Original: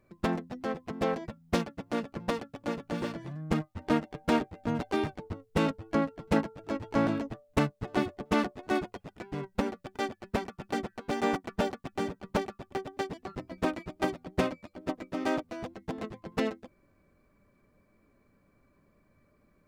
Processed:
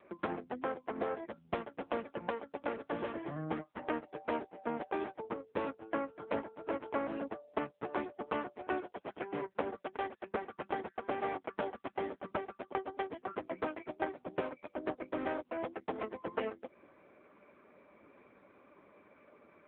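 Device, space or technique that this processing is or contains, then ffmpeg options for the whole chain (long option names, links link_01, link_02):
voicemail: -filter_complex "[0:a]asettb=1/sr,asplit=3[link_01][link_02][link_03];[link_01]atrim=end=15.804[link_04];[link_02]atrim=start=15.8:end=16.31,asetpts=PTS-STARTPTS,afade=type=in:duration=0.004:curve=qsin,afade=type=out:start_time=0.506:duration=0.004:curve=qsin,agate=range=-33dB:threshold=-53dB:ratio=3:detection=peak[link_05];[link_03]atrim=start=16.306[link_06];[link_04][link_05]acrossfade=duration=0.004:curve1=hsin:curve2=qsin[link_07];[link_07][link_06]acrossfade=duration=0.004:curve1=qsin:curve2=hsin,highpass=360,lowpass=2700,acompressor=threshold=-46dB:ratio=6,volume=13dB" -ar 8000 -c:a libopencore_amrnb -b:a 6700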